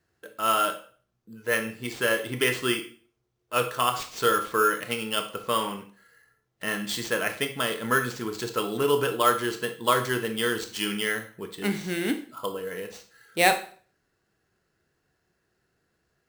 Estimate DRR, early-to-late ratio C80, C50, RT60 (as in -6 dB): 7.5 dB, 17.0 dB, 11.5 dB, 0.45 s